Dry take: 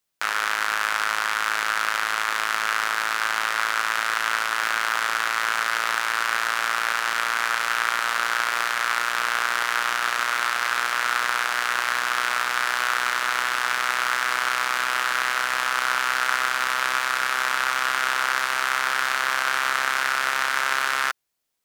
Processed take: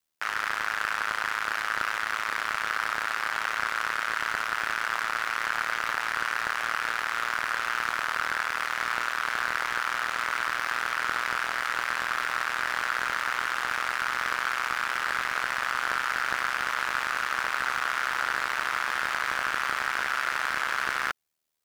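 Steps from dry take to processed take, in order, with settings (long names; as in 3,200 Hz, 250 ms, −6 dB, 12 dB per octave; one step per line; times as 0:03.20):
ring modulation 39 Hz
slew-rate limiting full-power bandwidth 220 Hz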